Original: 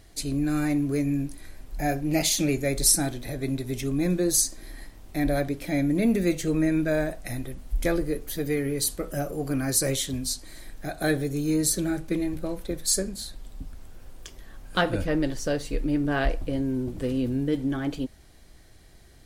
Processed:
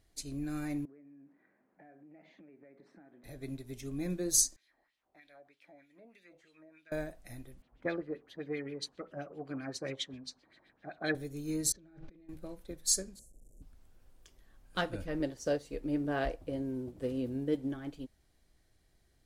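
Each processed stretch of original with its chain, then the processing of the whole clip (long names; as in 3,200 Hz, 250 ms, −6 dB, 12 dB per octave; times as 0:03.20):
0:00.85–0:03.24: Chebyshev band-pass filter 190–1,900 Hz, order 3 + downward compressor 12 to 1, threshold −36 dBFS
0:04.56–0:06.92: LFO wah 3.2 Hz 630–3,500 Hz, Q 2.2 + downward compressor 4 to 1, threshold −37 dBFS
0:07.62–0:11.15: high-pass filter 150 Hz + auto-filter low-pass sine 7.6 Hz 880–3,800 Hz
0:11.72–0:12.29: compressor whose output falls as the input rises −38 dBFS + high-frequency loss of the air 210 metres
0:13.19–0:13.62: linear delta modulator 64 kbit/s, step −39 dBFS + elliptic band-stop filter 580–7,100 Hz
0:15.20–0:17.74: high-pass filter 46 Hz + parametric band 530 Hz +6 dB 1.5 octaves
whole clip: dynamic equaliser 6,300 Hz, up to +7 dB, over −43 dBFS, Q 1.6; expander for the loud parts 1.5 to 1, over −35 dBFS; level −7.5 dB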